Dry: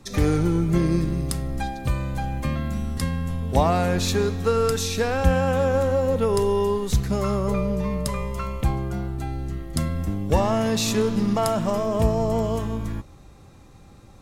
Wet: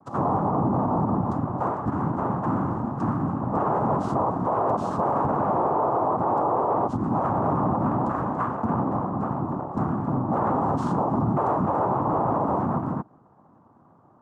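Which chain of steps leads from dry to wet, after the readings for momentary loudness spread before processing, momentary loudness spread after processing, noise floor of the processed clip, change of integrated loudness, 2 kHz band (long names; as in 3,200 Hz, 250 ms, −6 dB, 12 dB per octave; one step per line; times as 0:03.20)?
8 LU, 4 LU, −56 dBFS, −1.0 dB, −8.0 dB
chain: in parallel at −5 dB: fuzz pedal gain 29 dB, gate −36 dBFS
on the sum: cochlear-implant simulation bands 4
drawn EQ curve 490 Hz 0 dB, 1,200 Hz +9 dB, 2,300 Hz −27 dB
brickwall limiter −10 dBFS, peak gain reduction 9.5 dB
level −5 dB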